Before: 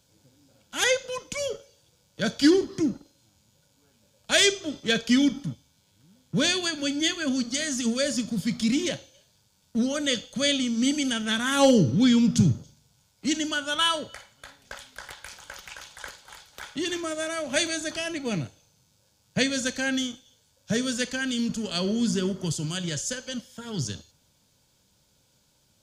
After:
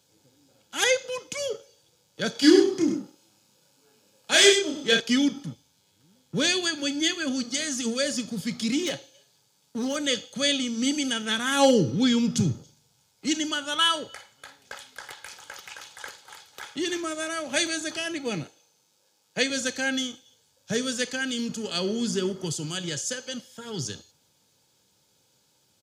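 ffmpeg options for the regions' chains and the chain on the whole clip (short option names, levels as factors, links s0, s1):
-filter_complex "[0:a]asettb=1/sr,asplit=3[s0][s1][s2];[s0]atrim=end=2.324[s3];[s1]atrim=start=2.32:end=5,asetpts=PTS-STARTPTS,afade=t=in:d=0.004:c=qsin,afade=t=out:st=2.676:d=0.004:c=qsin,highpass=140,asplit=2[s4][s5];[s5]adelay=30,volume=0.794[s6];[s4][s6]amix=inputs=2:normalize=0,atrim=end_sample=118188,aecho=1:1:99:0.422,atrim=end_sample=118188[s7];[s2]atrim=start=4.996[s8];[s3][s7]acrossfade=d=0.004:c1=hsin:c2=qsin[s9];[s9][s8]acrossfade=d=0.004:c1=qsin:c2=hsin,asettb=1/sr,asplit=3[s10][s11][s12];[s10]atrim=end=8.834[s13];[s11]atrim=start=8.83:end=9.96,asetpts=PTS-STARTPTS,afade=t=in:d=0.004:c=qsin,afade=t=out:st=1.126:d=0.004:c=qsin,highpass=120,aecho=1:1:7.1:0.34,atrim=end_sample=49833,asoftclip=type=hard:threshold=0.0794[s14];[s12]atrim=start=9.956[s15];[s13][s14]acrossfade=d=0.004:c1=hsin:c2=qsin[s16];[s16][s15]acrossfade=d=0.004:c1=qsin:c2=hsin,asettb=1/sr,asplit=3[s17][s18][s19];[s17]atrim=end=18.434[s20];[s18]atrim=start=18.43:end=19.5,asetpts=PTS-STARTPTS,afade=t=in:d=0.004:c=qsin,afade=t=out:st=1.066:d=0.004:c=qsin,highpass=190,bass=f=250:g=-4,treble=f=4000:g=-1[s21];[s19]atrim=start=19.496[s22];[s20][s21]acrossfade=d=0.004:c1=hsin:c2=qsin[s23];[s23][s22]acrossfade=d=0.004:c1=qsin:c2=hsin,highpass=140,aecho=1:1:2.4:0.32"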